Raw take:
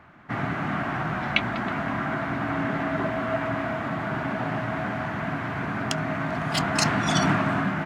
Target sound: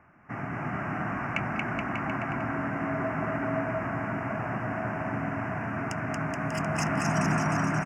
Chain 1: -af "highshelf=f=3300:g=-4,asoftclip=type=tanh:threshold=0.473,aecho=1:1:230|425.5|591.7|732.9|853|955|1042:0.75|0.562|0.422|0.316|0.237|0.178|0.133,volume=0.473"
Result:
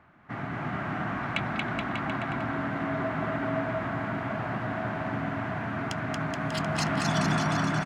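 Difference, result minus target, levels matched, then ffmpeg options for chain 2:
4 kHz band +7.5 dB
-af "asuperstop=centerf=3800:order=8:qfactor=1.7,highshelf=f=3300:g=-4,asoftclip=type=tanh:threshold=0.473,aecho=1:1:230|425.5|591.7|732.9|853|955|1042:0.75|0.562|0.422|0.316|0.237|0.178|0.133,volume=0.473"

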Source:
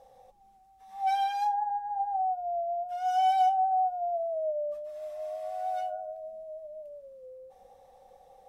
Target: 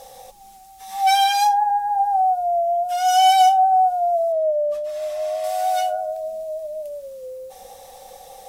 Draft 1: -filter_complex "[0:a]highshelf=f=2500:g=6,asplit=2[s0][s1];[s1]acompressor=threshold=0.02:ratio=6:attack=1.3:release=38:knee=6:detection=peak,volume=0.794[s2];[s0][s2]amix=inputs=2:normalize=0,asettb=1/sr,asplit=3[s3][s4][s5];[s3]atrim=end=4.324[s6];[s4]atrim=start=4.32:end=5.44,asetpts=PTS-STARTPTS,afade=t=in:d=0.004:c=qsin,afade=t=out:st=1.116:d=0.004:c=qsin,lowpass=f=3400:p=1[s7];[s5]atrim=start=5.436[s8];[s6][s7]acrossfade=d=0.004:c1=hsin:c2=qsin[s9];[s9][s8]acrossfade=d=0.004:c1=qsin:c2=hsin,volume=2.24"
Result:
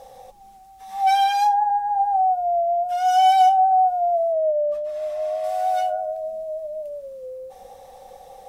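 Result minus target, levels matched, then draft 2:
4 kHz band -6.0 dB
-filter_complex "[0:a]highshelf=f=2500:g=18,asplit=2[s0][s1];[s1]acompressor=threshold=0.02:ratio=6:attack=1.3:release=38:knee=6:detection=peak,volume=0.794[s2];[s0][s2]amix=inputs=2:normalize=0,asettb=1/sr,asplit=3[s3][s4][s5];[s3]atrim=end=4.324[s6];[s4]atrim=start=4.32:end=5.44,asetpts=PTS-STARTPTS,afade=t=in:d=0.004:c=qsin,afade=t=out:st=1.116:d=0.004:c=qsin,lowpass=f=3400:p=1[s7];[s5]atrim=start=5.436[s8];[s6][s7]acrossfade=d=0.004:c1=hsin:c2=qsin[s9];[s9][s8]acrossfade=d=0.004:c1=qsin:c2=hsin,volume=2.24"

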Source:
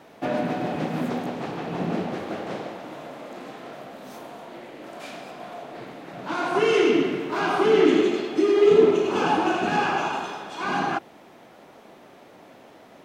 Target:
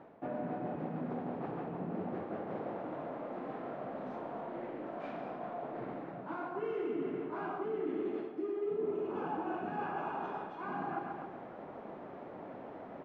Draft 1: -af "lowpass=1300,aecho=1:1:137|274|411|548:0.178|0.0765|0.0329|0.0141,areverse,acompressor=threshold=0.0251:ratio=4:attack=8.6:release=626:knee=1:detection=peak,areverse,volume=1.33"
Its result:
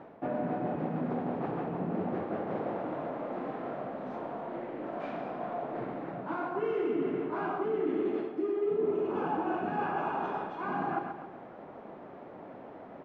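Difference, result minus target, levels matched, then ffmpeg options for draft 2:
compression: peak gain reduction -5.5 dB
-af "lowpass=1300,aecho=1:1:137|274|411|548:0.178|0.0765|0.0329|0.0141,areverse,acompressor=threshold=0.0106:ratio=4:attack=8.6:release=626:knee=1:detection=peak,areverse,volume=1.33"

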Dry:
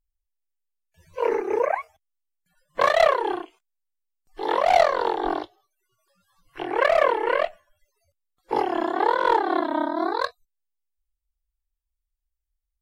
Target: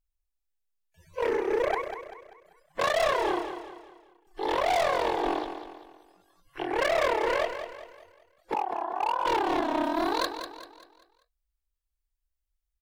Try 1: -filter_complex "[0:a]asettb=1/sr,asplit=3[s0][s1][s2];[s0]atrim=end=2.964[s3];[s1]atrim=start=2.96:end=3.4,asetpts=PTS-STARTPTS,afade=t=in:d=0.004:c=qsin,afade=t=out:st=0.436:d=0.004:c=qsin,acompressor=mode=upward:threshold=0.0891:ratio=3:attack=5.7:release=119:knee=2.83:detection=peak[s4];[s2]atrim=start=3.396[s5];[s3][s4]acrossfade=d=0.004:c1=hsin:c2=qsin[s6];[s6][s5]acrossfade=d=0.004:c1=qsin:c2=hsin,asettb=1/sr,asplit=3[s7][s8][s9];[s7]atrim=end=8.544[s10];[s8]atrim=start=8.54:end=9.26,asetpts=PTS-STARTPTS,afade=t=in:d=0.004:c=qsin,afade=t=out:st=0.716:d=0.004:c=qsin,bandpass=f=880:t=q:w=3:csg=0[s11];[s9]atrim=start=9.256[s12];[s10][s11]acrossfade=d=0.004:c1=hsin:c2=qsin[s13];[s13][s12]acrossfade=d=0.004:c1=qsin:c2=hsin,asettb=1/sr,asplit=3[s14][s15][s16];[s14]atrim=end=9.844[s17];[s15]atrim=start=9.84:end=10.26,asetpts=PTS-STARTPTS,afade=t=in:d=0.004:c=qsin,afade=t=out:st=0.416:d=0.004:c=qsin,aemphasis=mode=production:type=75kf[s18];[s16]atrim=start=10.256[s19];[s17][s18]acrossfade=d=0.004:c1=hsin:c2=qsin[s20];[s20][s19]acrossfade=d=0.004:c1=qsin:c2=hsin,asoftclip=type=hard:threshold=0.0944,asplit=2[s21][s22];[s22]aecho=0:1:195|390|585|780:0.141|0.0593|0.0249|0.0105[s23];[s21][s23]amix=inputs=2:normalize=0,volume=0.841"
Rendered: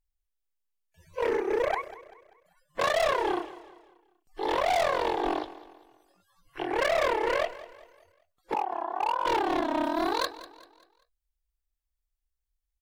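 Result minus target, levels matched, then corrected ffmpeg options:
echo-to-direct -7.5 dB
-filter_complex "[0:a]asettb=1/sr,asplit=3[s0][s1][s2];[s0]atrim=end=2.964[s3];[s1]atrim=start=2.96:end=3.4,asetpts=PTS-STARTPTS,afade=t=in:d=0.004:c=qsin,afade=t=out:st=0.436:d=0.004:c=qsin,acompressor=mode=upward:threshold=0.0891:ratio=3:attack=5.7:release=119:knee=2.83:detection=peak[s4];[s2]atrim=start=3.396[s5];[s3][s4]acrossfade=d=0.004:c1=hsin:c2=qsin[s6];[s6][s5]acrossfade=d=0.004:c1=qsin:c2=hsin,asettb=1/sr,asplit=3[s7][s8][s9];[s7]atrim=end=8.544[s10];[s8]atrim=start=8.54:end=9.26,asetpts=PTS-STARTPTS,afade=t=in:d=0.004:c=qsin,afade=t=out:st=0.716:d=0.004:c=qsin,bandpass=f=880:t=q:w=3:csg=0[s11];[s9]atrim=start=9.256[s12];[s10][s11]acrossfade=d=0.004:c1=hsin:c2=qsin[s13];[s13][s12]acrossfade=d=0.004:c1=qsin:c2=hsin,asettb=1/sr,asplit=3[s14][s15][s16];[s14]atrim=end=9.844[s17];[s15]atrim=start=9.84:end=10.26,asetpts=PTS-STARTPTS,afade=t=in:d=0.004:c=qsin,afade=t=out:st=0.416:d=0.004:c=qsin,aemphasis=mode=production:type=75kf[s18];[s16]atrim=start=10.256[s19];[s17][s18]acrossfade=d=0.004:c1=hsin:c2=qsin[s20];[s20][s19]acrossfade=d=0.004:c1=qsin:c2=hsin,asoftclip=type=hard:threshold=0.0944,asplit=2[s21][s22];[s22]aecho=0:1:195|390|585|780|975:0.335|0.141|0.0591|0.0248|0.0104[s23];[s21][s23]amix=inputs=2:normalize=0,volume=0.841"

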